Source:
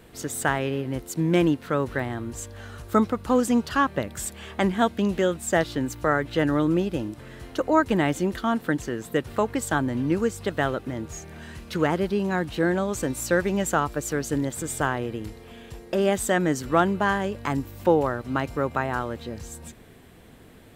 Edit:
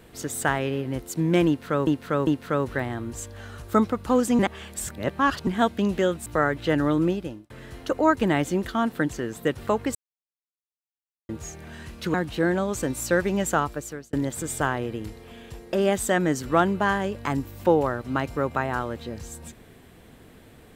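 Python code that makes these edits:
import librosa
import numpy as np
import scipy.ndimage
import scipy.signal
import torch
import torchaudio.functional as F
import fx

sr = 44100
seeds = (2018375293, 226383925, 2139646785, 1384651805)

y = fx.edit(x, sr, fx.repeat(start_s=1.47, length_s=0.4, count=3),
    fx.reverse_span(start_s=3.59, length_s=1.08),
    fx.cut(start_s=5.46, length_s=0.49),
    fx.fade_out_span(start_s=6.75, length_s=0.44),
    fx.silence(start_s=9.64, length_s=1.34),
    fx.cut(start_s=11.83, length_s=0.51),
    fx.fade_out_span(start_s=13.8, length_s=0.53), tone=tone)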